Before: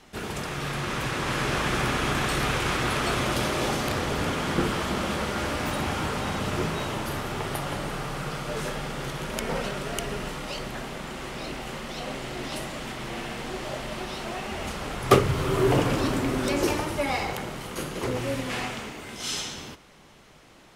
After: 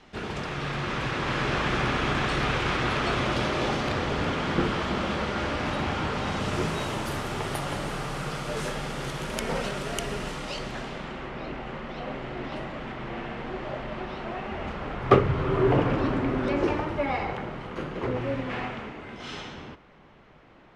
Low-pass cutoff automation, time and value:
6.10 s 4.4 kHz
6.73 s 11 kHz
10.13 s 11 kHz
10.83 s 5.8 kHz
11.30 s 2.2 kHz

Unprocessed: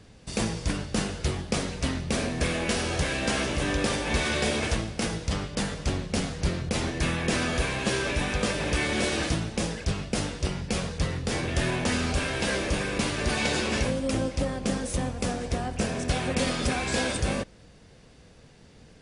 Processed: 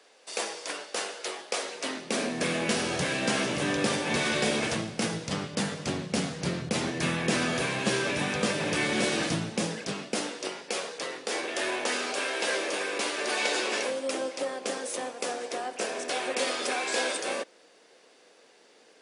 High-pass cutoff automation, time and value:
high-pass 24 dB/octave
1.60 s 440 Hz
2.66 s 130 Hz
9.45 s 130 Hz
10.58 s 350 Hz

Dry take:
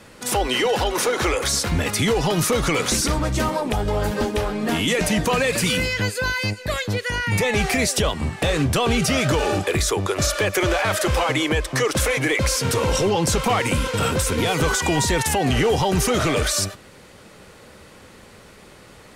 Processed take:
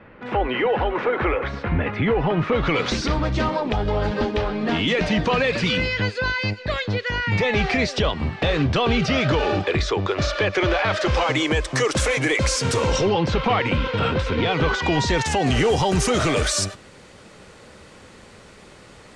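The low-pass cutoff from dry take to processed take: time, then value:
low-pass 24 dB/octave
2.40 s 2.4 kHz
2.87 s 4.6 kHz
10.86 s 4.6 kHz
11.62 s 8.5 kHz
12.80 s 8.5 kHz
13.21 s 3.9 kHz
14.66 s 3.9 kHz
15.62 s 9.1 kHz

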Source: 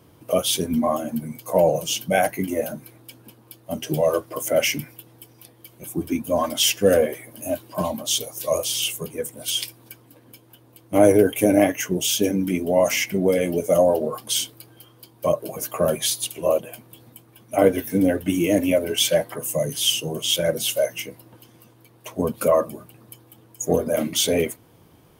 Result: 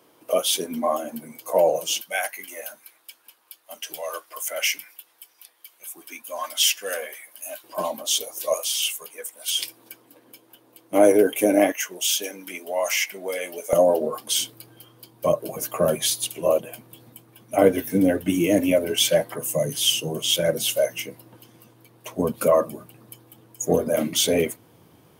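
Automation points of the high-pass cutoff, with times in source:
370 Hz
from 2.01 s 1.2 kHz
from 7.64 s 400 Hz
from 8.54 s 920 Hz
from 9.59 s 280 Hz
from 11.72 s 830 Hz
from 13.73 s 210 Hz
from 14.40 s 97 Hz

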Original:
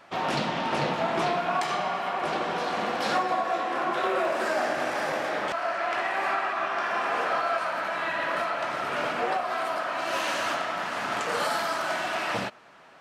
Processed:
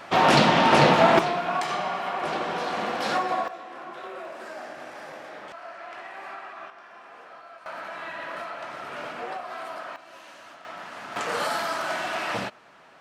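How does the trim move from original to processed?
+10 dB
from 1.19 s 0 dB
from 3.48 s -12 dB
from 6.70 s -19.5 dB
from 7.66 s -7 dB
from 9.96 s -18.5 dB
from 10.65 s -8.5 dB
from 11.16 s 0 dB

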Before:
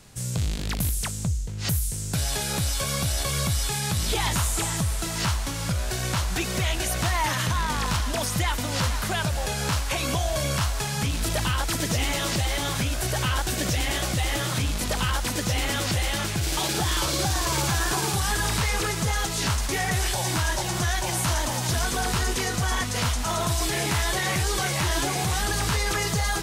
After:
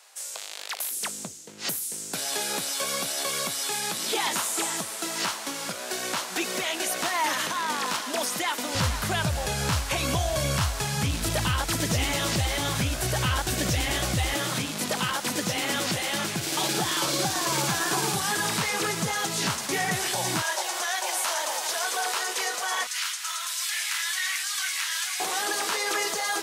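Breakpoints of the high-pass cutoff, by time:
high-pass 24 dB/octave
620 Hz
from 0.91 s 250 Hz
from 8.75 s 58 Hz
from 14.34 s 150 Hz
from 20.42 s 480 Hz
from 22.87 s 1.4 kHz
from 25.20 s 330 Hz

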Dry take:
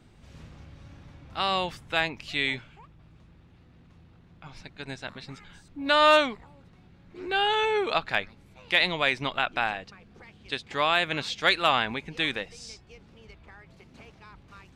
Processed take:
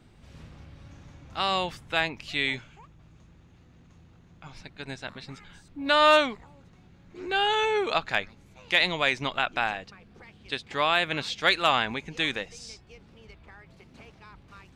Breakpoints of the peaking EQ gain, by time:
peaking EQ 6.6 kHz 0.28 oct
-1.5 dB
from 0.91 s +10 dB
from 1.63 s +1 dB
from 2.54 s +12 dB
from 4.52 s +1 dB
from 6.29 s +8.5 dB
from 9.86 s -0.5 dB
from 11.53 s +8.5 dB
from 12.58 s -0.5 dB

